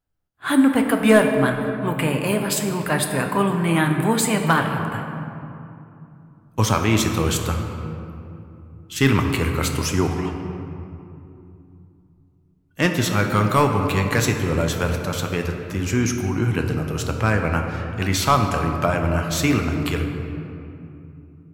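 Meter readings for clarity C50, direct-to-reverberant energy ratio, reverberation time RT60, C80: 5.0 dB, 3.0 dB, 2.7 s, 6.0 dB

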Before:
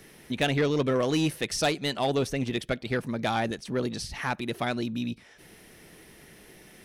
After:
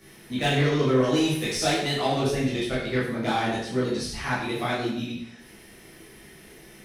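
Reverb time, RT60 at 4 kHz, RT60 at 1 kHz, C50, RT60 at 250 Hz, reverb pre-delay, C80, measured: 0.70 s, 0.65 s, 0.70 s, 1.5 dB, 0.70 s, 6 ms, 5.5 dB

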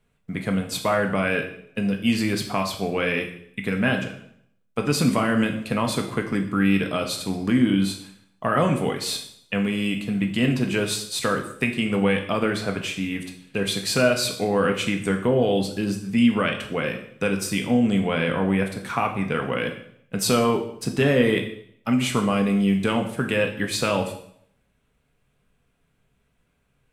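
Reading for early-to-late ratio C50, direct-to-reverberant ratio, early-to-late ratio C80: 9.0 dB, 3.0 dB, 12.0 dB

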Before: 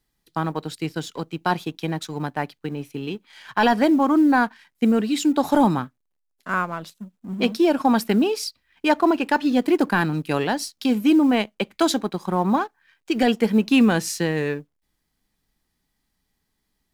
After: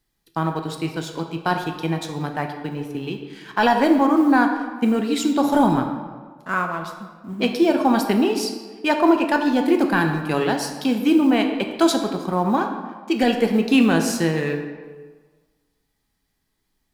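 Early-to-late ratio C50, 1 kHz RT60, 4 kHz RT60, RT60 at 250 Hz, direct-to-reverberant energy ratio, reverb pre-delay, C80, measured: 6.5 dB, 1.5 s, 0.95 s, 1.5 s, 4.0 dB, 3 ms, 8.0 dB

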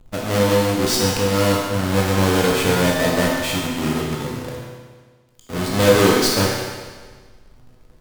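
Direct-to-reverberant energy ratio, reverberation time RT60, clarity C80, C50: -3.5 dB, 1.5 s, 2.5 dB, 0.0 dB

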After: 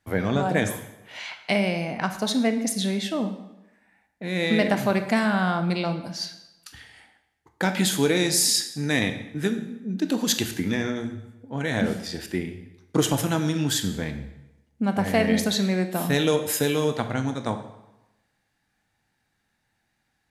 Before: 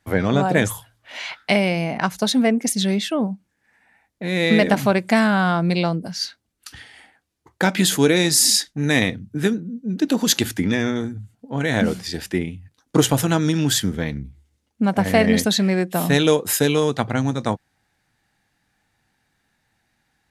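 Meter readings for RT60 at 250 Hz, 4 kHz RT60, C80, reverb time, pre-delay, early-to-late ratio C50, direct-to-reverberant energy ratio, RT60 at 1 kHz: 0.90 s, 0.80 s, 12.5 dB, 1.0 s, 23 ms, 10.0 dB, 7.5 dB, 1.0 s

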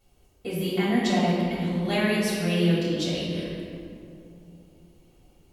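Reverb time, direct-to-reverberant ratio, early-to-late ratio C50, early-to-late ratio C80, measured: 2.7 s, -9.0 dB, -1.5 dB, 0.0 dB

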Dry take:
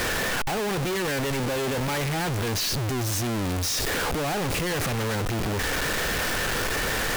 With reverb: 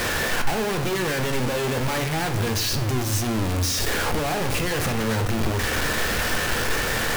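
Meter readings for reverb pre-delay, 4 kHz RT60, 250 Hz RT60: 8 ms, 0.55 s, 1.2 s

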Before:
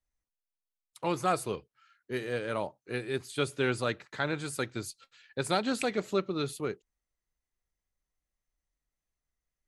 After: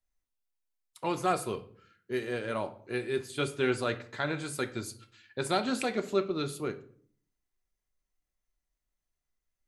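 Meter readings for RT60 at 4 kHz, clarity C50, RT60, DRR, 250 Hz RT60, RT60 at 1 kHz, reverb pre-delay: 0.40 s, 15.5 dB, 0.55 s, 7.0 dB, 0.80 s, 0.50 s, 3 ms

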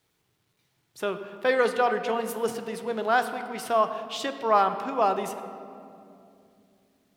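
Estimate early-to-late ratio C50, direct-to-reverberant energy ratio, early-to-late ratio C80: 9.5 dB, 8.0 dB, 10.0 dB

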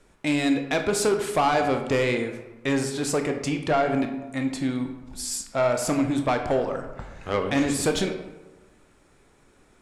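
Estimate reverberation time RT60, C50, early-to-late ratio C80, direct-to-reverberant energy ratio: 1.1 s, 8.0 dB, 10.0 dB, 5.0 dB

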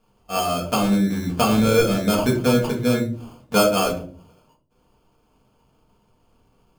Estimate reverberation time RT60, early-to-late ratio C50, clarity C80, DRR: 0.45 s, 10.0 dB, 14.0 dB, -2.5 dB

